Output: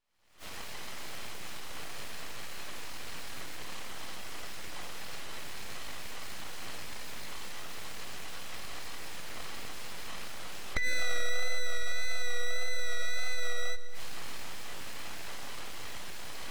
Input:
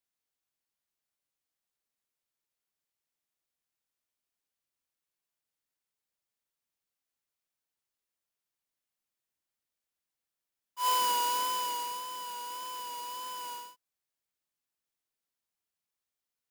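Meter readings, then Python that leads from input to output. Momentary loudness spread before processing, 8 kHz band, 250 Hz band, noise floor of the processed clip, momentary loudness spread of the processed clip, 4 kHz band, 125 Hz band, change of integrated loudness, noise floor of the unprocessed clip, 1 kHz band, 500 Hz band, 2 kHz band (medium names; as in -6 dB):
14 LU, +1.0 dB, +10.0 dB, -36 dBFS, 9 LU, +1.0 dB, no reading, -7.5 dB, under -85 dBFS, -11.0 dB, +6.5 dB, +13.0 dB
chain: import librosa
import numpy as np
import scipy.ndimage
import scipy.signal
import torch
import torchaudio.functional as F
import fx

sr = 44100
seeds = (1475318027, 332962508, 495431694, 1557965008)

y = fx.bin_compress(x, sr, power=0.6)
y = fx.recorder_agc(y, sr, target_db=-22.5, rise_db_per_s=71.0, max_gain_db=30)
y = fx.riaa(y, sr, side='playback')
y = fx.notch(y, sr, hz=520.0, q=12.0)
y = fx.spec_gate(y, sr, threshold_db=-30, keep='strong')
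y = fx.noise_reduce_blind(y, sr, reduce_db=17)
y = fx.peak_eq(y, sr, hz=2100.0, db=12.5, octaves=0.2)
y = np.abs(y)
y = y + 10.0 ** (-16.0 / 20.0) * np.pad(y, (int(233 * sr / 1000.0), 0))[:len(y)]
y = fx.rev_schroeder(y, sr, rt60_s=2.9, comb_ms=38, drr_db=17.5)
y = y * 10.0 ** (1.5 / 20.0)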